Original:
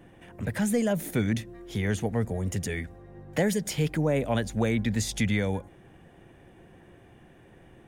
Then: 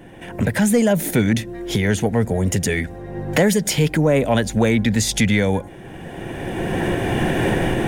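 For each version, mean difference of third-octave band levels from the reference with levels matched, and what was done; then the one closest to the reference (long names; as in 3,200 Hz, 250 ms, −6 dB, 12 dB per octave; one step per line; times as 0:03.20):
6.0 dB: camcorder AGC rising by 17 dB per second
parametric band 62 Hz −4.5 dB 1.9 octaves
notch filter 1,200 Hz, Q 8.5
in parallel at −6 dB: soft clipping −22 dBFS, distortion −15 dB
on the sum: level +7 dB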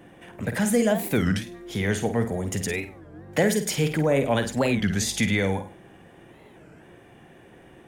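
3.0 dB: low-shelf EQ 110 Hz −11 dB
on a send: flutter between parallel walls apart 8.7 metres, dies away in 0.35 s
on the sum: wow of a warped record 33 1/3 rpm, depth 250 cents
level +5 dB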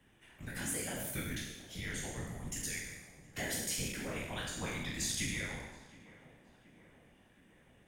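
10.0 dB: peak hold with a decay on every bin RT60 1.10 s
guitar amp tone stack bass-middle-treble 5-5-5
random phases in short frames
on a send: tape delay 721 ms, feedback 73%, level −17 dB, low-pass 1,600 Hz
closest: second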